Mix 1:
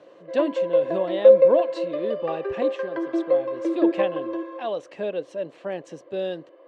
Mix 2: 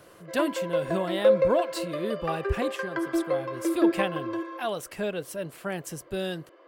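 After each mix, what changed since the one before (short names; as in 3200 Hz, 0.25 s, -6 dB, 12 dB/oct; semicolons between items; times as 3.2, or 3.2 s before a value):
master: remove speaker cabinet 240–5100 Hz, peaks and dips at 290 Hz +5 dB, 540 Hz +8 dB, 1400 Hz -9 dB, 2200 Hz -4 dB, 3300 Hz -3 dB, 4900 Hz -9 dB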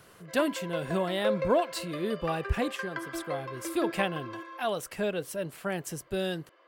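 background: add bell 350 Hz -12 dB 2.3 oct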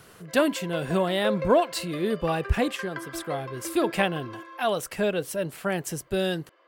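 speech +5.0 dB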